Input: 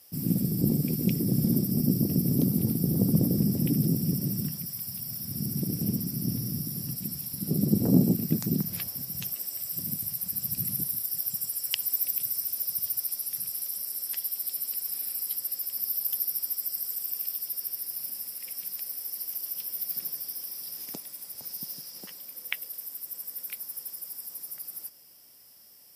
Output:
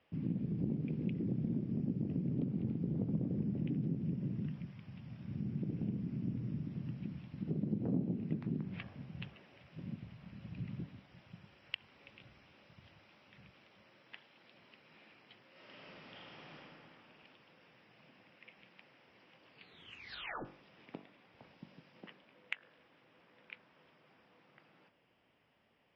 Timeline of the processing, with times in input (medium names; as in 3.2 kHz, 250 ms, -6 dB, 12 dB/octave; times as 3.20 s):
15.51–16.55 s: reverb throw, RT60 3 s, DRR -9.5 dB
19.47 s: tape stop 0.98 s
whole clip: steep low-pass 3 kHz 36 dB/octave; de-hum 47.89 Hz, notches 37; compression 2.5:1, threshold -33 dBFS; trim -3 dB